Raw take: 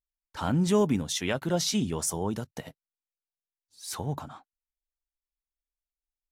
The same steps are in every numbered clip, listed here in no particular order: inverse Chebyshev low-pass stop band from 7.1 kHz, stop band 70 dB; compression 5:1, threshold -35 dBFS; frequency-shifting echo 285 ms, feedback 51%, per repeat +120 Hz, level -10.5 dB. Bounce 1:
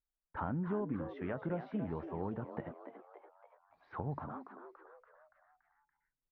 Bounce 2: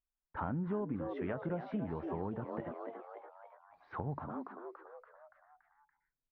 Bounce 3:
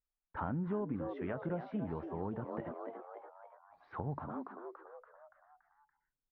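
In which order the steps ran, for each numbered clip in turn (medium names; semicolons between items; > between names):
compression > inverse Chebyshev low-pass > frequency-shifting echo; inverse Chebyshev low-pass > frequency-shifting echo > compression; frequency-shifting echo > compression > inverse Chebyshev low-pass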